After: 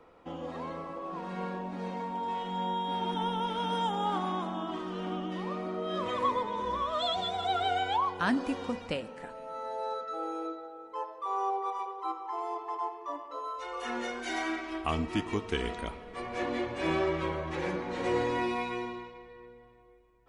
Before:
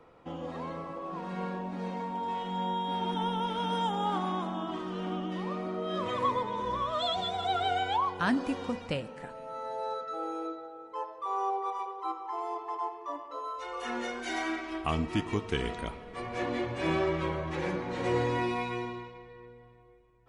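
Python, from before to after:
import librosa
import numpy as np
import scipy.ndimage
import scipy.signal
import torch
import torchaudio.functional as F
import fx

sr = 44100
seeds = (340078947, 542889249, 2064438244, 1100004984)

y = fx.peak_eq(x, sr, hz=130.0, db=-12.0, octaves=0.4)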